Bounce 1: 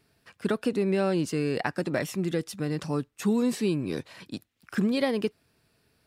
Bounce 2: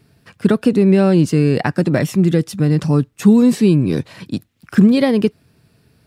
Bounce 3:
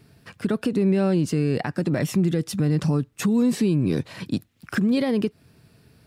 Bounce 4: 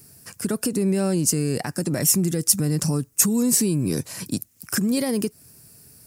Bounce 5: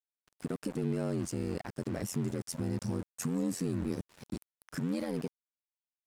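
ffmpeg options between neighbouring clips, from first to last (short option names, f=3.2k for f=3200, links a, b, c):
-af "equalizer=f=130:w=0.54:g=10.5,volume=7.5dB"
-af "acompressor=threshold=-13dB:ratio=6,alimiter=limit=-13.5dB:level=0:latency=1:release=211"
-af "aexciter=amount=13.1:drive=1.5:freq=5.3k,volume=-1.5dB"
-af "aeval=exprs='val(0)*gte(abs(val(0)),0.0376)':c=same,aeval=exprs='val(0)*sin(2*PI*44*n/s)':c=same,aemphasis=mode=reproduction:type=75kf,volume=-8dB"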